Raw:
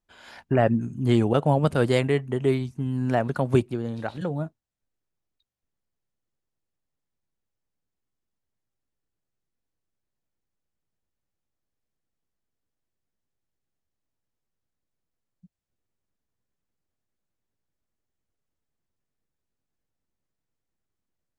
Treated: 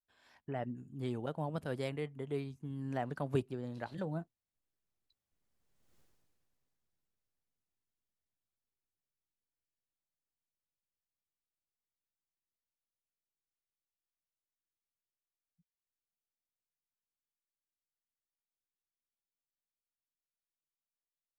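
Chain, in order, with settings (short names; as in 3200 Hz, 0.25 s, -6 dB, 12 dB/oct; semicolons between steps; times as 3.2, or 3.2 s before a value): Doppler pass-by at 5.99, 19 m/s, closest 2.1 m; gain +15.5 dB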